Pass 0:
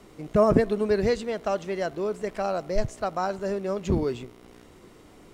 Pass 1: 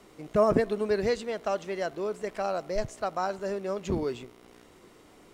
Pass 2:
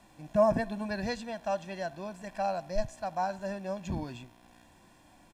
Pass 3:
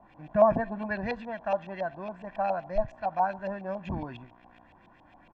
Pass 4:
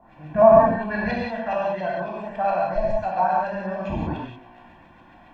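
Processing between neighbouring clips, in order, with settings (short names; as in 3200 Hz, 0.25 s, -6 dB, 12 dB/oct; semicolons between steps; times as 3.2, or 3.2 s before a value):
low shelf 230 Hz -7.5 dB; gain -1.5 dB
harmonic-percussive split percussive -6 dB; comb 1.2 ms, depth 91%; gain -2.5 dB
LFO low-pass saw up 7.2 Hz 720–3000 Hz
non-linear reverb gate 0.21 s flat, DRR -5 dB; gain +1.5 dB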